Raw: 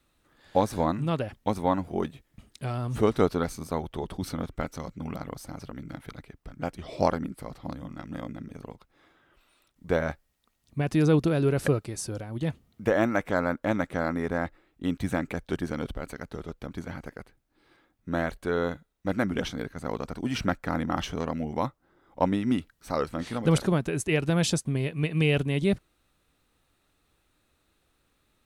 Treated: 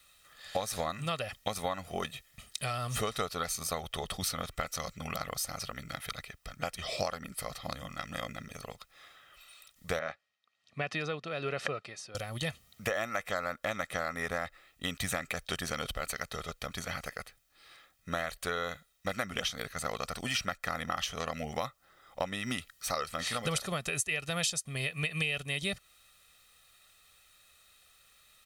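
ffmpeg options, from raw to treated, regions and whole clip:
-filter_complex "[0:a]asettb=1/sr,asplit=3[s0][s1][s2];[s0]atrim=end=9.994[s3];[s1]atrim=start=9.99:end=12.15,asetpts=PTS-STARTPTS,afade=t=in:d=0.004:c=qsin,afade=t=out:st=2.156:d=0.004:c=qsin,tremolo=f=1.2:d=0.7,highpass=180,lowpass=3100[s4];[s2]atrim=start=12.146[s5];[s3][s4]acrossfade=d=0.004:c1=hsin:c2=qsin[s6];[s6][s5]acrossfade=d=0.004:c1=qsin:c2=hsin,tiltshelf=f=1100:g=-10,aecho=1:1:1.6:0.58,acompressor=threshold=0.0224:ratio=6,volume=1.41"

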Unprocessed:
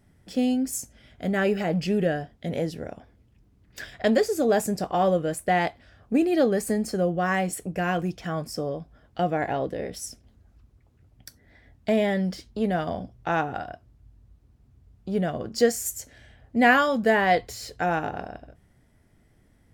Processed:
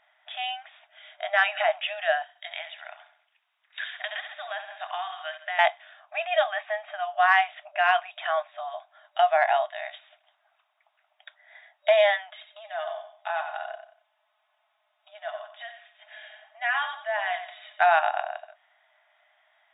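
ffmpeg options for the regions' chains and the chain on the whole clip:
-filter_complex "[0:a]asettb=1/sr,asplit=3[s0][s1][s2];[s0]atrim=end=2.224[s3];[s1]atrim=start=2.22:end=5.59,asetpts=PTS-STARTPTS,afade=t=in:d=0.004:c=qsin,afade=t=out:st=3.366:d=0.004:c=qsin,highpass=1200,aecho=1:1:67|134|201|268|335:0.251|0.128|0.0653|0.0333|0.017,atrim=end_sample=148617,acompressor=threshold=0.02:ratio=12:attack=3.2:release=140:knee=1:detection=peak[s4];[s2]atrim=start=5.586[s5];[s3][s4]acrossfade=d=0.004:c1=hsin:c2=qsin[s6];[s6][s5]acrossfade=d=0.004:c1=qsin:c2=hsin,asettb=1/sr,asplit=3[s7][s8][s9];[s7]atrim=end=12.304[s10];[s8]atrim=start=12.3:end=17.8,asetpts=PTS-STARTPTS,afade=t=in:d=0.004:c=qsin,afade=t=out:st=5.496:d=0.004:c=qsin,aecho=1:1:4.7:0.51,atrim=end_sample=242550,acompressor=threshold=0.00794:ratio=2:attack=3.2:release=140:knee=1:detection=peak,aecho=1:1:91|182|273:0.335|0.104|0.0322,atrim=end_sample=242550[s11];[s9]atrim=start=17.796[s12];[s10][s11]acrossfade=d=0.004:c1=hsin:c2=qsin[s13];[s13][s12]acrossfade=d=0.004:c1=qsin:c2=hsin,afftfilt=real='re*between(b*sr/4096,600,3800)':imag='im*between(b*sr/4096,600,3800)':win_size=4096:overlap=0.75,aemphasis=mode=production:type=cd,acontrast=81"

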